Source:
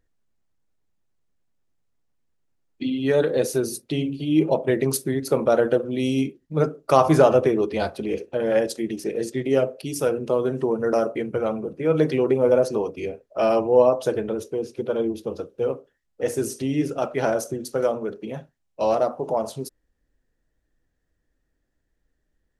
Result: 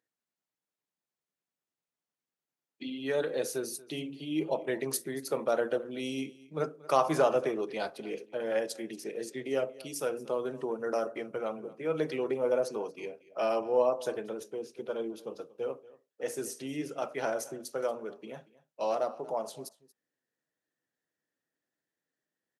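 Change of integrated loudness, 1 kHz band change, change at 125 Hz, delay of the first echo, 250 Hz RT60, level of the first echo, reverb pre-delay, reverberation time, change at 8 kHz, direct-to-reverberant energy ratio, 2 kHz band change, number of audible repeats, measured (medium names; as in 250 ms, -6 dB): -10.5 dB, -8.0 dB, -17.5 dB, 233 ms, no reverb, -20.5 dB, no reverb, no reverb, -6.5 dB, no reverb, -7.0 dB, 1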